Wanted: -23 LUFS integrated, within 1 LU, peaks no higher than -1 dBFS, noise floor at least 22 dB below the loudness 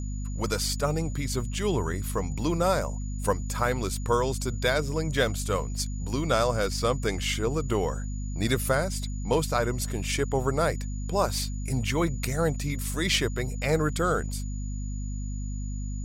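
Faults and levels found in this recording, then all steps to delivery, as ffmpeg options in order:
hum 50 Hz; harmonics up to 250 Hz; hum level -30 dBFS; steady tone 6900 Hz; tone level -47 dBFS; loudness -28.0 LUFS; peak -10.0 dBFS; loudness target -23.0 LUFS
-> -af "bandreject=f=50:t=h:w=6,bandreject=f=100:t=h:w=6,bandreject=f=150:t=h:w=6,bandreject=f=200:t=h:w=6,bandreject=f=250:t=h:w=6"
-af "bandreject=f=6.9k:w=30"
-af "volume=5dB"

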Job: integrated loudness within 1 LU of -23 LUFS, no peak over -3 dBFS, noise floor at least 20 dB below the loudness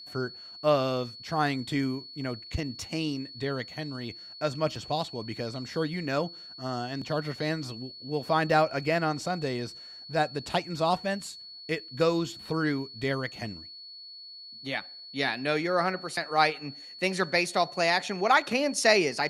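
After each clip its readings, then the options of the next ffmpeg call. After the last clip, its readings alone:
steady tone 4400 Hz; tone level -43 dBFS; loudness -29.0 LUFS; peak -7.5 dBFS; loudness target -23.0 LUFS
-> -af "bandreject=f=4.4k:w=30"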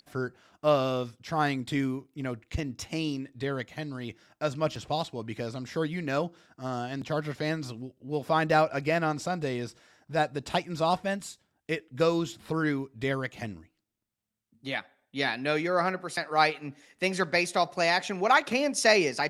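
steady tone none; loudness -29.0 LUFS; peak -8.0 dBFS; loudness target -23.0 LUFS
-> -af "volume=6dB,alimiter=limit=-3dB:level=0:latency=1"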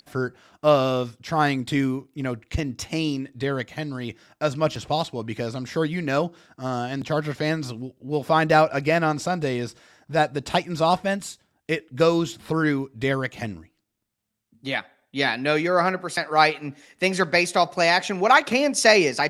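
loudness -23.0 LUFS; peak -3.0 dBFS; noise floor -73 dBFS

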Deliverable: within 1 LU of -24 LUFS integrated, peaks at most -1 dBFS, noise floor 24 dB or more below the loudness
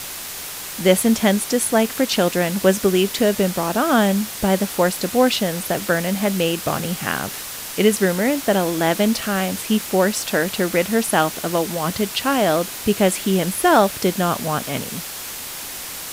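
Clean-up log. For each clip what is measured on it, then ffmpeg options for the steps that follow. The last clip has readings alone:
noise floor -32 dBFS; noise floor target -44 dBFS; loudness -19.5 LUFS; peak -1.5 dBFS; loudness target -24.0 LUFS
-> -af "afftdn=nr=12:nf=-32"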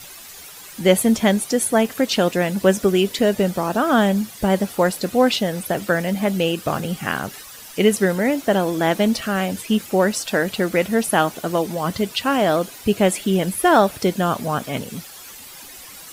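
noise floor -40 dBFS; noise floor target -44 dBFS
-> -af "afftdn=nr=6:nf=-40"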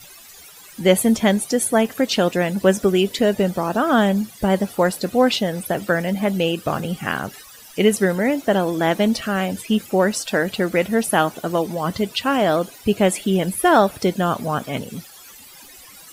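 noise floor -44 dBFS; loudness -20.0 LUFS; peak -1.5 dBFS; loudness target -24.0 LUFS
-> -af "volume=-4dB"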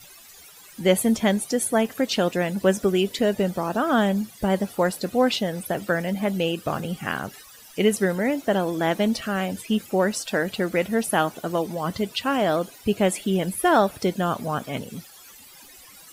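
loudness -24.0 LUFS; peak -5.5 dBFS; noise floor -48 dBFS

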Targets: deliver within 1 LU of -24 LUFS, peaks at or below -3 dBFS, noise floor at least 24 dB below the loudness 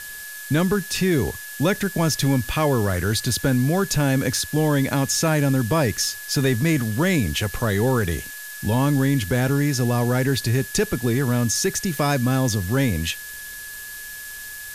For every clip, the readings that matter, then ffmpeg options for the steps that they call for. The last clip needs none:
steady tone 1700 Hz; tone level -36 dBFS; noise floor -36 dBFS; noise floor target -46 dBFS; loudness -21.5 LUFS; peak -9.5 dBFS; loudness target -24.0 LUFS
-> -af "bandreject=f=1.7k:w=30"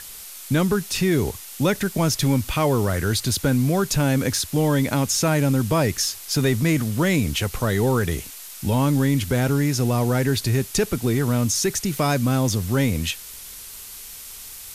steady tone none; noise floor -39 dBFS; noise floor target -46 dBFS
-> -af "afftdn=nr=7:nf=-39"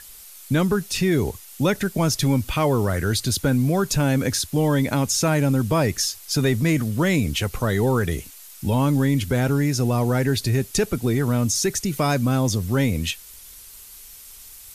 noise floor -43 dBFS; noise floor target -46 dBFS
-> -af "afftdn=nr=6:nf=-43"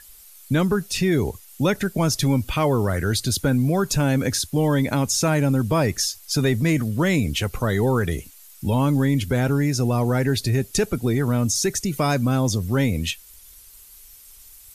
noise floor -47 dBFS; loudness -22.0 LUFS; peak -10.0 dBFS; loudness target -24.0 LUFS
-> -af "volume=-2dB"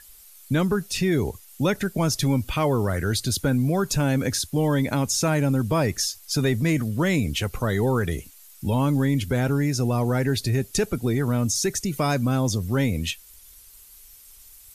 loudness -24.0 LUFS; peak -12.0 dBFS; noise floor -49 dBFS

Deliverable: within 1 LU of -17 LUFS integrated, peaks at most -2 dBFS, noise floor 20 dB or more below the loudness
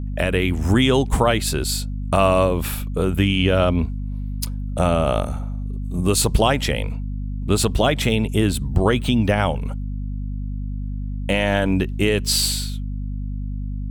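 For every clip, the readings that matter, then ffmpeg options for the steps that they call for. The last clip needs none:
hum 50 Hz; harmonics up to 250 Hz; hum level -24 dBFS; loudness -21.0 LUFS; peak -4.0 dBFS; loudness target -17.0 LUFS
-> -af "bandreject=f=50:t=h:w=6,bandreject=f=100:t=h:w=6,bandreject=f=150:t=h:w=6,bandreject=f=200:t=h:w=6,bandreject=f=250:t=h:w=6"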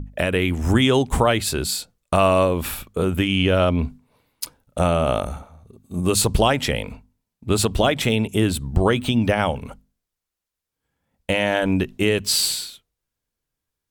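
hum none; loudness -20.5 LUFS; peak -4.0 dBFS; loudness target -17.0 LUFS
-> -af "volume=3.5dB,alimiter=limit=-2dB:level=0:latency=1"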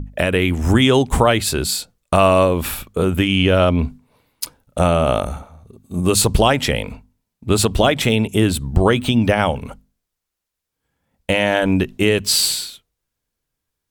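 loudness -17.0 LUFS; peak -2.0 dBFS; noise floor -81 dBFS

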